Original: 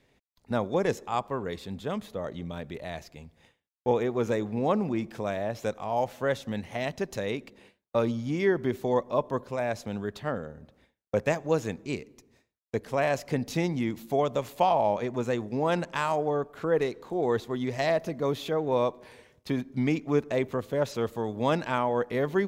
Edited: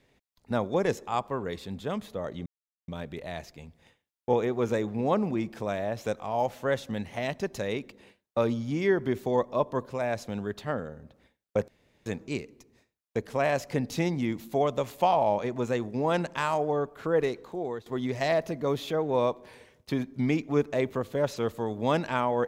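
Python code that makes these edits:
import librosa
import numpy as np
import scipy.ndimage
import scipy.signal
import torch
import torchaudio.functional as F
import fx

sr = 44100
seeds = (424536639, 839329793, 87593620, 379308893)

y = fx.edit(x, sr, fx.insert_silence(at_s=2.46, length_s=0.42),
    fx.room_tone_fill(start_s=11.26, length_s=0.38),
    fx.fade_out_to(start_s=16.97, length_s=0.47, floor_db=-18.0), tone=tone)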